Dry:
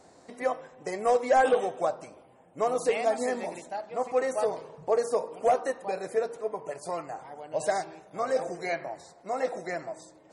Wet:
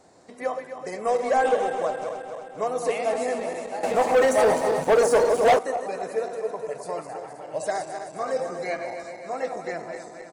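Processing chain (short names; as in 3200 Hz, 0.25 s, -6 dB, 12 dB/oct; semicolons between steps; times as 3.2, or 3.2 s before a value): regenerating reverse delay 0.131 s, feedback 76%, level -7.5 dB; 3.83–5.59 sample leveller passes 3; speakerphone echo 0.12 s, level -23 dB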